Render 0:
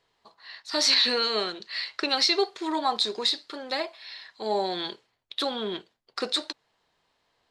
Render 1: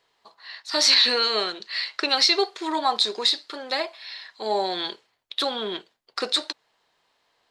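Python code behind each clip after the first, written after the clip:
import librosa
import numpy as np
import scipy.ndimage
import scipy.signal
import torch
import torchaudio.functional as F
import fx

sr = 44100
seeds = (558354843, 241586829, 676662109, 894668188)

y = fx.low_shelf(x, sr, hz=240.0, db=-10.5)
y = F.gain(torch.from_numpy(y), 4.0).numpy()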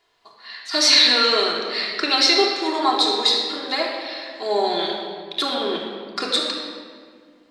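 y = fx.room_shoebox(x, sr, seeds[0], volume_m3=3200.0, walls='mixed', distance_m=3.2)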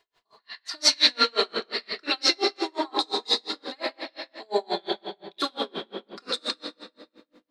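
y = fx.echo_feedback(x, sr, ms=116, feedback_pct=56, wet_db=-18)
y = y * 10.0 ** (-36 * (0.5 - 0.5 * np.cos(2.0 * np.pi * 5.7 * np.arange(len(y)) / sr)) / 20.0)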